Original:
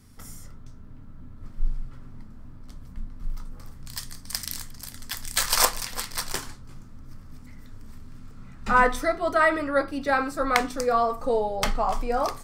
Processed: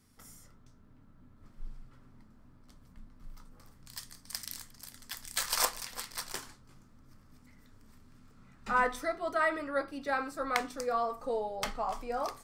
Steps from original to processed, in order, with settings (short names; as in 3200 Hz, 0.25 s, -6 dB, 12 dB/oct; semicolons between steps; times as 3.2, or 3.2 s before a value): low shelf 140 Hz -9.5 dB; gain -8.5 dB